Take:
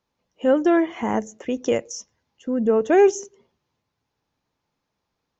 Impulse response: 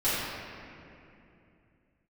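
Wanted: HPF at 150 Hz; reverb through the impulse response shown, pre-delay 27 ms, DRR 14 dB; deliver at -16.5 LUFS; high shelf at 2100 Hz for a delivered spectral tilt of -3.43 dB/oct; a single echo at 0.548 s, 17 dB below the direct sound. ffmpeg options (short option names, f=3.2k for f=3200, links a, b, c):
-filter_complex "[0:a]highpass=150,highshelf=f=2.1k:g=7.5,aecho=1:1:548:0.141,asplit=2[a][b];[1:a]atrim=start_sample=2205,adelay=27[c];[b][c]afir=irnorm=-1:irlink=0,volume=-27dB[d];[a][d]amix=inputs=2:normalize=0,volume=5dB"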